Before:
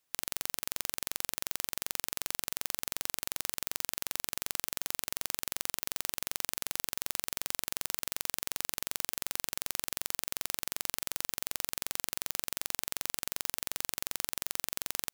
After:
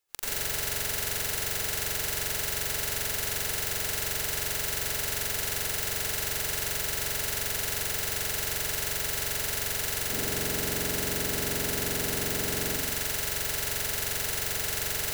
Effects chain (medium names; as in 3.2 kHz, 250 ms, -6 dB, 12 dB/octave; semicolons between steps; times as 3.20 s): 10.01–12.66 s: peaking EQ 250 Hz +13.5 dB 1.5 oct; reverberation RT60 0.70 s, pre-delay 83 ms, DRR -11 dB; trim -4.5 dB